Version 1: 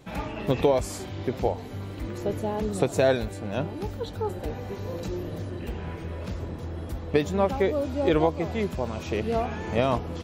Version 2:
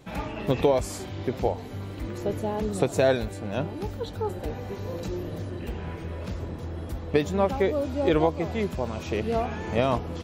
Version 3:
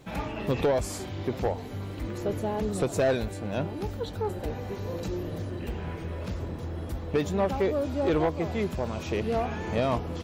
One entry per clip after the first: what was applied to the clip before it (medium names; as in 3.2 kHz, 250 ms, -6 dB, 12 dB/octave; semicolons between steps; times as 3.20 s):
no audible change
bit crusher 12-bit; saturation -18 dBFS, distortion -14 dB